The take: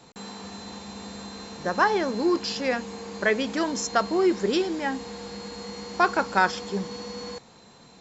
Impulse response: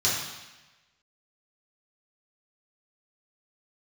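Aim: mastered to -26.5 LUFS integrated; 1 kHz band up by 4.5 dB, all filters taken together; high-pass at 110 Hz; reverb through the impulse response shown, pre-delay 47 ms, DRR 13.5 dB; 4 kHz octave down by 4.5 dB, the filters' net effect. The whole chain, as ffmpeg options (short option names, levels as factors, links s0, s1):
-filter_complex "[0:a]highpass=110,equalizer=f=1000:t=o:g=6,equalizer=f=4000:t=o:g=-6,asplit=2[s0][s1];[1:a]atrim=start_sample=2205,adelay=47[s2];[s1][s2]afir=irnorm=-1:irlink=0,volume=0.0501[s3];[s0][s3]amix=inputs=2:normalize=0,volume=0.708"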